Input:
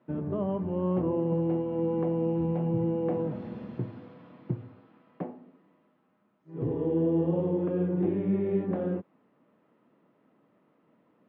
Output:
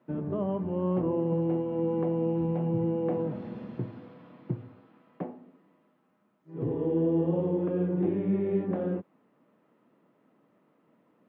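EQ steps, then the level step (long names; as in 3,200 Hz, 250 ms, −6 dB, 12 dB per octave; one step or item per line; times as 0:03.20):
high-pass filter 91 Hz
0.0 dB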